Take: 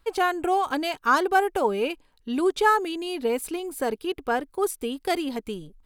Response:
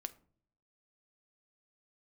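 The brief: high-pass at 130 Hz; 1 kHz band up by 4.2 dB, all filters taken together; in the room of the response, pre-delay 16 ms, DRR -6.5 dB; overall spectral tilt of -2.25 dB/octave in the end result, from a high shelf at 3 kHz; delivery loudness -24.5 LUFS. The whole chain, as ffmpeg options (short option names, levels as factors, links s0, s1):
-filter_complex "[0:a]highpass=130,equalizer=f=1000:t=o:g=5,highshelf=f=3000:g=6,asplit=2[s0][s1];[1:a]atrim=start_sample=2205,adelay=16[s2];[s1][s2]afir=irnorm=-1:irlink=0,volume=2.99[s3];[s0][s3]amix=inputs=2:normalize=0,volume=0.335"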